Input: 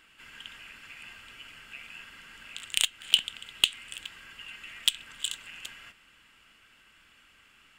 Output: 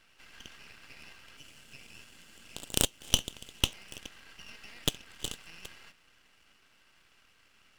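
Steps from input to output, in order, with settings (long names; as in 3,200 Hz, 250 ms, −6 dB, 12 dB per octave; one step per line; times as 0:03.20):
0:01.37–0:03.61: octave-band graphic EQ 125/250/500/1,000/2,000/4,000/8,000 Hz +4/+5/+4/−7/−5/+3/+7 dB
half-wave rectification
level −1 dB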